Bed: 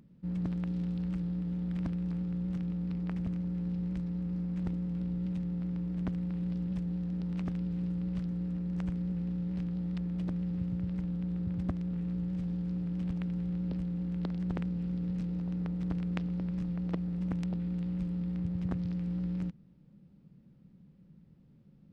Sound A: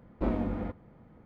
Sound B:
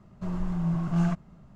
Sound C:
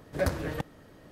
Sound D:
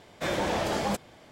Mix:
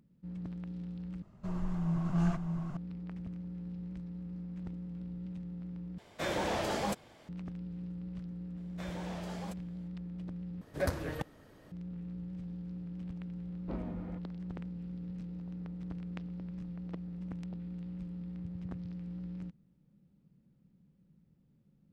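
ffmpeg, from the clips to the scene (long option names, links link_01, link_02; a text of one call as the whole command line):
ffmpeg -i bed.wav -i cue0.wav -i cue1.wav -i cue2.wav -i cue3.wav -filter_complex "[4:a]asplit=2[link_01][link_02];[0:a]volume=-8dB[link_03];[2:a]aecho=1:1:607:0.631[link_04];[link_03]asplit=4[link_05][link_06][link_07][link_08];[link_05]atrim=end=1.224[link_09];[link_04]atrim=end=1.55,asetpts=PTS-STARTPTS,volume=-5dB[link_10];[link_06]atrim=start=2.766:end=5.984[link_11];[link_01]atrim=end=1.31,asetpts=PTS-STARTPTS,volume=-5dB[link_12];[link_07]atrim=start=7.286:end=10.614[link_13];[3:a]atrim=end=1.11,asetpts=PTS-STARTPTS,volume=-4.5dB[link_14];[link_08]atrim=start=11.716[link_15];[link_02]atrim=end=1.31,asetpts=PTS-STARTPTS,volume=-16.5dB,afade=type=in:duration=0.004:curve=hsin,afade=type=out:start_time=1.306:duration=0.004:curve=hsin,adelay=8570[link_16];[1:a]atrim=end=1.25,asetpts=PTS-STARTPTS,volume=-11.5dB,afade=type=in:duration=0.004:curve=hsin,afade=type=out:start_time=1.246:duration=0.004:curve=hsin,adelay=13470[link_17];[link_09][link_10]acrossfade=duration=0.004:curve1=hsin:curve2=hsin[link_18];[link_18][link_11]acrossfade=duration=0.004:curve1=hsin:curve2=hsin[link_19];[link_19][link_12]acrossfade=duration=0.004:curve1=hsin:curve2=hsin[link_20];[link_20][link_13]acrossfade=duration=0.004:curve1=hsin:curve2=hsin[link_21];[link_21][link_14]acrossfade=duration=0.004:curve1=hsin:curve2=hsin[link_22];[link_22][link_15]acrossfade=duration=0.004:curve1=hsin:curve2=hsin[link_23];[link_23][link_16][link_17]amix=inputs=3:normalize=0" out.wav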